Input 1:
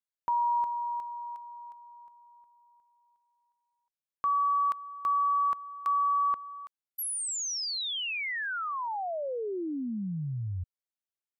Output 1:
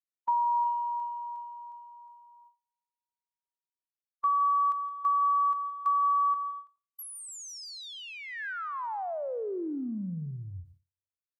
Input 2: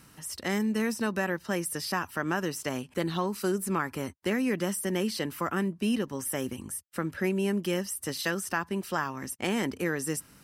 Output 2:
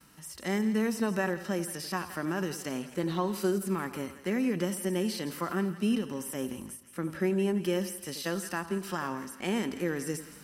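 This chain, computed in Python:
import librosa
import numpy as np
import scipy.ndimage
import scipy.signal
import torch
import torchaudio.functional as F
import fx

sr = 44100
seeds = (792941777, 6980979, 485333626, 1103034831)

y = fx.peak_eq(x, sr, hz=110.0, db=-8.5, octaves=0.69)
y = fx.transient(y, sr, attack_db=3, sustain_db=7)
y = fx.echo_split(y, sr, split_hz=1200.0, low_ms=88, high_ms=167, feedback_pct=52, wet_db=-15.0)
y = fx.hpss(y, sr, part='percussive', gain_db=-10)
y = fx.gate_hold(y, sr, open_db=-55.0, close_db=-57.0, hold_ms=13.0, range_db=-30, attack_ms=9.1, release_ms=70.0)
y = fx.end_taper(y, sr, db_per_s=220.0)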